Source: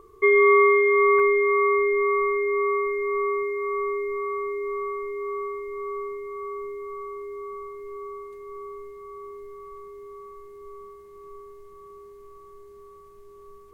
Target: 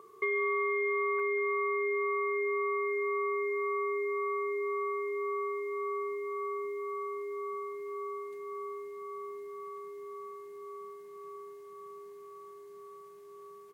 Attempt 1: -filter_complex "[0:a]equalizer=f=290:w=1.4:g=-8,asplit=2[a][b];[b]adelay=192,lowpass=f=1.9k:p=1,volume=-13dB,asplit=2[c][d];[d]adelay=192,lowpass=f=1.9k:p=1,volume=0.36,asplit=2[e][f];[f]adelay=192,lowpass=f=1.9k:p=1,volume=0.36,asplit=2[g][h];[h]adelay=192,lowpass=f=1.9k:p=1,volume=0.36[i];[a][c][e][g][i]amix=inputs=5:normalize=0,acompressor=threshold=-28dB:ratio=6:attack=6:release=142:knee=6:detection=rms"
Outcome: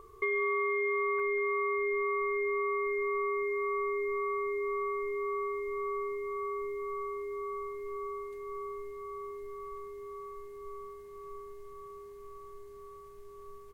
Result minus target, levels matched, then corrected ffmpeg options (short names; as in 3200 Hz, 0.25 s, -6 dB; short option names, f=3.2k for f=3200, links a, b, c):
125 Hz band +11.5 dB
-filter_complex "[0:a]highpass=f=160:w=0.5412,highpass=f=160:w=1.3066,equalizer=f=290:w=1.4:g=-8,asplit=2[a][b];[b]adelay=192,lowpass=f=1.9k:p=1,volume=-13dB,asplit=2[c][d];[d]adelay=192,lowpass=f=1.9k:p=1,volume=0.36,asplit=2[e][f];[f]adelay=192,lowpass=f=1.9k:p=1,volume=0.36,asplit=2[g][h];[h]adelay=192,lowpass=f=1.9k:p=1,volume=0.36[i];[a][c][e][g][i]amix=inputs=5:normalize=0,acompressor=threshold=-28dB:ratio=6:attack=6:release=142:knee=6:detection=rms"